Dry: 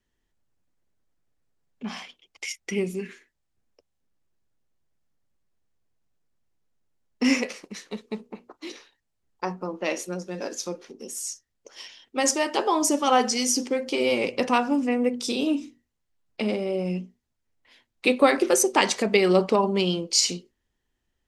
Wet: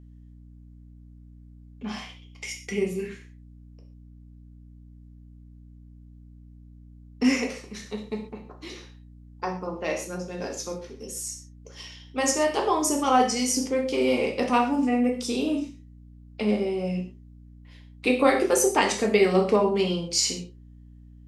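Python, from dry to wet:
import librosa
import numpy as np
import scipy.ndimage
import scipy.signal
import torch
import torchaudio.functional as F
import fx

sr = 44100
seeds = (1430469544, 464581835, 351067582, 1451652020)

y = fx.dynamic_eq(x, sr, hz=3800.0, q=1.0, threshold_db=-39.0, ratio=4.0, max_db=-4)
y = fx.rev_gated(y, sr, seeds[0], gate_ms=160, shape='falling', drr_db=1.0)
y = fx.add_hum(y, sr, base_hz=60, snr_db=20)
y = F.gain(torch.from_numpy(y), -2.5).numpy()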